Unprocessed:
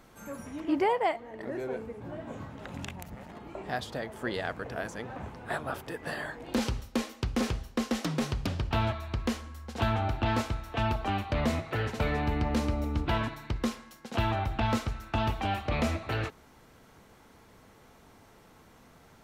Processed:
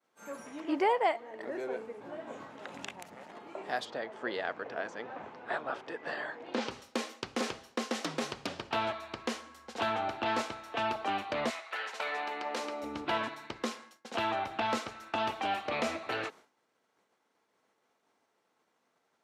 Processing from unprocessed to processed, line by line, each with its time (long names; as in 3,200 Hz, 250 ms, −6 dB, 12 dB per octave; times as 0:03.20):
0:03.85–0:06.71: high-frequency loss of the air 120 metres
0:11.49–0:12.82: high-pass filter 1,200 Hz → 350 Hz
whole clip: low-pass filter 9,400 Hz 12 dB per octave; downward expander −45 dBFS; high-pass filter 350 Hz 12 dB per octave